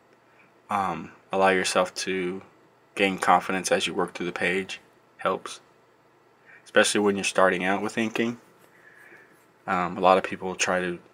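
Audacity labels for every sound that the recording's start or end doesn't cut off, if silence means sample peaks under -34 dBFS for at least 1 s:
6.750000	8.340000	sound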